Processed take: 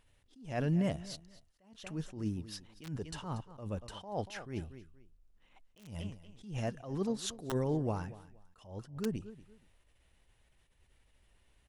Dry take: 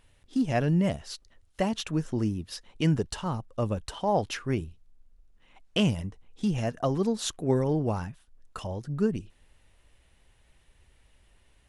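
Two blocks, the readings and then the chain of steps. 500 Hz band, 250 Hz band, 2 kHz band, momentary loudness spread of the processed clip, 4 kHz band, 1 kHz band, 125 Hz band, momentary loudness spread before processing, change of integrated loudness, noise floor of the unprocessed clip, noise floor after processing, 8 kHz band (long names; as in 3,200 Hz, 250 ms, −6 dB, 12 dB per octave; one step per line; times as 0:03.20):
−9.5 dB, −9.5 dB, −9.5 dB, 17 LU, −10.5 dB, −11.0 dB, −8.5 dB, 13 LU, −9.0 dB, −64 dBFS, −70 dBFS, −8.0 dB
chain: repeating echo 236 ms, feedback 24%, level −18 dB
wrap-around overflow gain 14.5 dB
level that may rise only so fast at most 120 dB per second
level −6 dB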